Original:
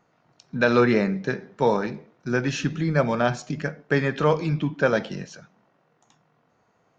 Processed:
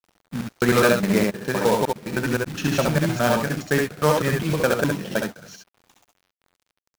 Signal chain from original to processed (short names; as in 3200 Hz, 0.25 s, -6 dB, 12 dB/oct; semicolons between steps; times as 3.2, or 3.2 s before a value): slices in reverse order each 0.103 s, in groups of 3; companded quantiser 4-bit; early reflections 67 ms -3.5 dB, 77 ms -8.5 dB